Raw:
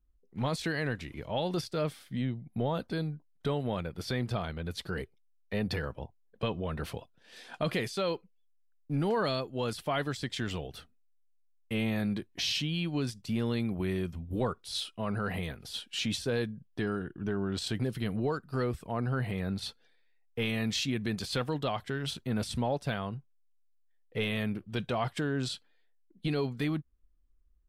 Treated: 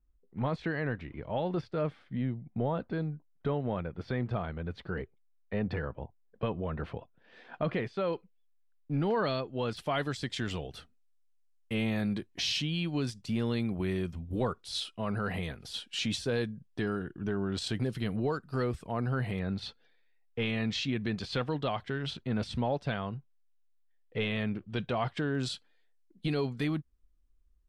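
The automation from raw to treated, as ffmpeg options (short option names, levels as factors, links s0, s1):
-af "asetnsamples=n=441:p=0,asendcmd='8.13 lowpass f 3800;9.77 lowpass f 9400;19.39 lowpass f 4300;25.35 lowpass f 10000',lowpass=2000"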